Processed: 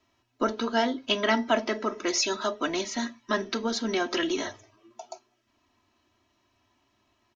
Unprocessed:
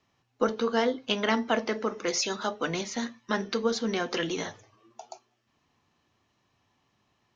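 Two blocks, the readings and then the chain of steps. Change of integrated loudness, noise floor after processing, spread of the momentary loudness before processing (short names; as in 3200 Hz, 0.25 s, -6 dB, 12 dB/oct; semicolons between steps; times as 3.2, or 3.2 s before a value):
+1.5 dB, -72 dBFS, 8 LU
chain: comb 3.1 ms, depth 78%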